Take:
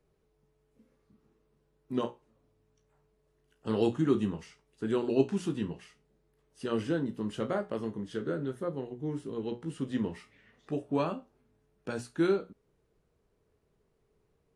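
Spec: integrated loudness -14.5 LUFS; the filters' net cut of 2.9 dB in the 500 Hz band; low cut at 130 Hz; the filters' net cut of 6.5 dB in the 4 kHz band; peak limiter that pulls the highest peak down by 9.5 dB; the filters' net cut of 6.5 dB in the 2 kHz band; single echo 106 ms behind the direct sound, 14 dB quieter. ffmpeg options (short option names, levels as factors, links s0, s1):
-af "highpass=130,equalizer=f=500:t=o:g=-3.5,equalizer=f=2000:t=o:g=-8.5,equalizer=f=4000:t=o:g=-5,alimiter=level_in=1.06:limit=0.0631:level=0:latency=1,volume=0.944,aecho=1:1:106:0.2,volume=14.1"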